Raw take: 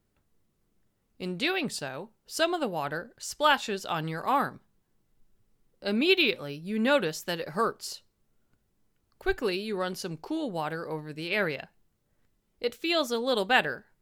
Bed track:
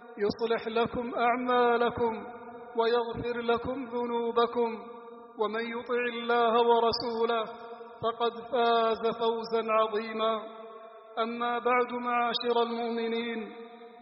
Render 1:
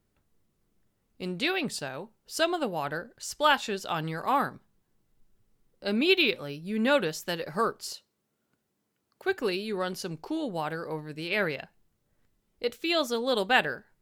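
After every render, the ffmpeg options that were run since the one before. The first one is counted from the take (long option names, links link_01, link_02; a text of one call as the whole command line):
ffmpeg -i in.wav -filter_complex "[0:a]asettb=1/sr,asplit=3[link_01][link_02][link_03];[link_01]atrim=end=7.934[link_04];[link_02]atrim=start=7.93:end=9.4,asetpts=PTS-STARTPTS,afade=type=in:duration=0.004:curve=qsin,afade=type=out:start_time=1.466:duration=0.004:curve=qsin,highpass=170[link_05];[link_03]atrim=start=9.396[link_06];[link_04][link_05]acrossfade=duration=0.004:curve1=hsin:curve2=qsin[link_07];[link_07][link_06]acrossfade=duration=0.004:curve1=qsin:curve2=hsin" out.wav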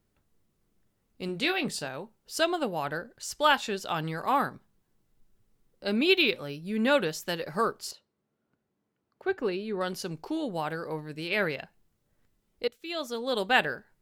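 ffmpeg -i in.wav -filter_complex "[0:a]asettb=1/sr,asplit=3[link_01][link_02][link_03];[link_01]atrim=end=1.264[link_04];[link_02]atrim=start=1.26:end=1.87,asetpts=PTS-STARTPTS,afade=type=in:duration=0.004:curve=qsin,afade=type=out:start_time=0.606:duration=0.004:curve=qsin,asplit=2[link_05][link_06];[link_06]adelay=25,volume=-9.5dB[link_07];[link_05][link_07]amix=inputs=2:normalize=0,atrim=end_sample=26901[link_08];[link_03]atrim=start=1.866[link_09];[link_04][link_08]acrossfade=duration=0.004:curve1=hsin:curve2=qsin[link_10];[link_10][link_09]acrossfade=duration=0.004:curve1=qsin:curve2=hsin,asettb=1/sr,asplit=3[link_11][link_12][link_13];[link_11]atrim=end=7.914[link_14];[link_12]atrim=start=7.91:end=9.81,asetpts=PTS-STARTPTS,afade=type=in:duration=0.004:curve=qsin,afade=type=out:start_time=1.896:duration=0.004:curve=qsin,lowpass=frequency=1500:poles=1[link_15];[link_13]atrim=start=9.806[link_16];[link_14][link_15]acrossfade=duration=0.004:curve1=hsin:curve2=qsin[link_17];[link_17][link_16]acrossfade=duration=0.004:curve1=qsin:curve2=hsin,asplit=2[link_18][link_19];[link_18]atrim=end=12.68,asetpts=PTS-STARTPTS,afade=type=out:start_time=12.676:duration=0.004:curve=hsin:silence=0.149624[link_20];[link_19]atrim=start=12.68,asetpts=PTS-STARTPTS,afade=type=in:duration=0.91:silence=0.149624[link_21];[link_20][link_21]concat=n=2:v=0:a=1" out.wav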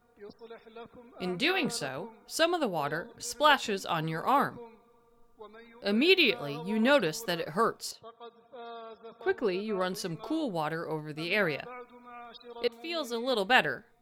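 ffmpeg -i in.wav -i bed.wav -filter_complex "[1:a]volume=-19dB[link_01];[0:a][link_01]amix=inputs=2:normalize=0" out.wav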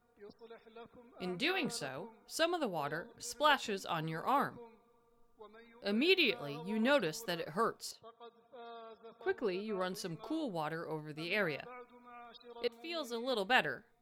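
ffmpeg -i in.wav -af "volume=-6.5dB" out.wav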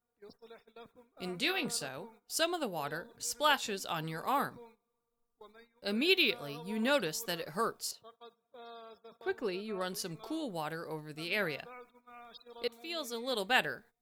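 ffmpeg -i in.wav -af "agate=range=-15dB:threshold=-57dB:ratio=16:detection=peak,highshelf=frequency=4700:gain=10" out.wav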